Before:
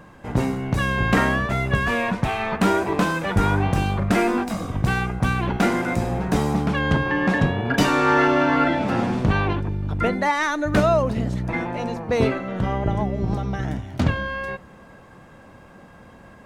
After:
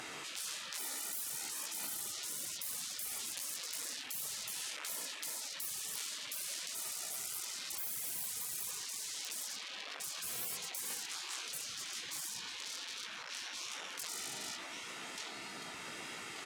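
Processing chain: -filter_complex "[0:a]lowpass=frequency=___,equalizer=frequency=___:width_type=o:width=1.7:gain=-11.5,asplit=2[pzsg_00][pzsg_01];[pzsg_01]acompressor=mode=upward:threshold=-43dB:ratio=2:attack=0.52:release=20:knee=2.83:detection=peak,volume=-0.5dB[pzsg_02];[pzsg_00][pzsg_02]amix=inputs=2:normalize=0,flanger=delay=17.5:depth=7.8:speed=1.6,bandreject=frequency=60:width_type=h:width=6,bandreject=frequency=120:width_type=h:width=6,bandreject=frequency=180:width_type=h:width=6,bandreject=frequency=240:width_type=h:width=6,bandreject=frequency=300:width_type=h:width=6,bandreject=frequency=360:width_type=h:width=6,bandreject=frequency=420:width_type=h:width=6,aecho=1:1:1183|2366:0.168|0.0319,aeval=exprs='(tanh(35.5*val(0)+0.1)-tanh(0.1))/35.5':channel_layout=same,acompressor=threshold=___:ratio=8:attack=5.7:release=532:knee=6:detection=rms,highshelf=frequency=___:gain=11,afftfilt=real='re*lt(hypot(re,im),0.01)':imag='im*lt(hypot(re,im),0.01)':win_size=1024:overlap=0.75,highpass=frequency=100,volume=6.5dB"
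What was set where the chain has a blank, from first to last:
9500, 190, -36dB, 2900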